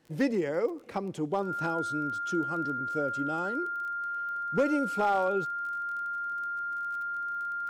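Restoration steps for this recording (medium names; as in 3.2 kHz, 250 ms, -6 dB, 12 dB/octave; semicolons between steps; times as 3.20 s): clip repair -19 dBFS; de-click; band-stop 1.4 kHz, Q 30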